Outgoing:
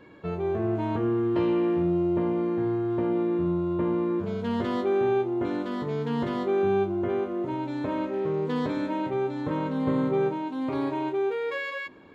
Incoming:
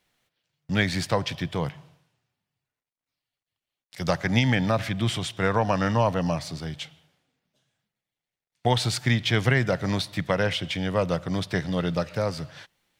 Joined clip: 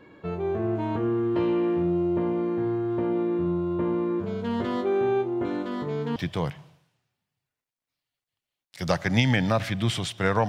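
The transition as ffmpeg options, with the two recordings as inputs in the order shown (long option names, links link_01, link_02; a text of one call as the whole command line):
ffmpeg -i cue0.wav -i cue1.wav -filter_complex "[0:a]apad=whole_dur=10.48,atrim=end=10.48,atrim=end=6.162[link_01];[1:a]atrim=start=1.348:end=5.67[link_02];[link_01][link_02]acrossfade=duration=0.004:curve1=hsin:curve2=hsin" out.wav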